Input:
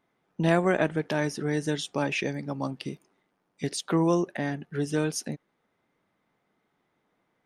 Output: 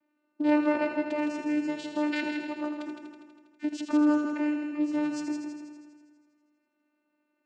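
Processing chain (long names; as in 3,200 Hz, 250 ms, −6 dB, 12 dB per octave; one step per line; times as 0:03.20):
parametric band 2,300 Hz +6.5 dB 0.32 octaves
channel vocoder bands 8, saw 299 Hz
echo machine with several playback heads 81 ms, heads first and second, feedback 60%, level −8.5 dB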